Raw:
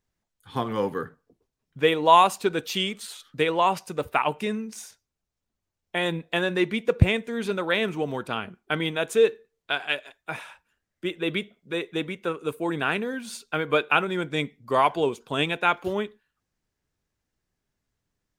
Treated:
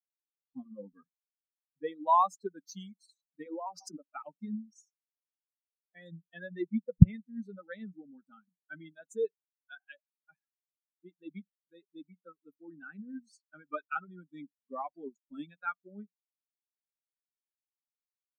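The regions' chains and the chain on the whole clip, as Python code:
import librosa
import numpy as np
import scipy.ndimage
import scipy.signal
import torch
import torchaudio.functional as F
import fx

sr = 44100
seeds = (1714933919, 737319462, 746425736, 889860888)

y = fx.chain(x, sr, fx.highpass(hz=230.0, slope=24),
    fx.high_shelf(hz=3200.0, db=-11.5),
    fx.pre_swell(db_per_s=27.0), at=(3.46, 4.08))
y = fx.bin_expand(y, sr, power=3.0)
y = fx.curve_eq(y, sr, hz=(110.0, 180.0, 290.0, 410.0, 590.0, 1200.0, 2800.0, 6200.0, 9900.0), db=(0, 11, -6, -10, -10, -3, -27, -5, -22))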